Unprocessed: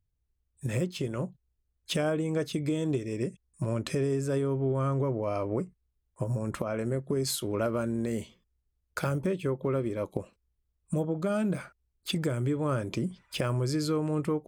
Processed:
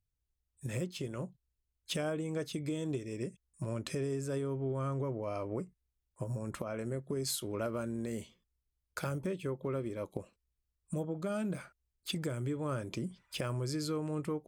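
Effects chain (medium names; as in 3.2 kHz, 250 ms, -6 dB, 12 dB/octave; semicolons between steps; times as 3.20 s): peaking EQ 9.6 kHz +3.5 dB 2.9 oct; trim -7 dB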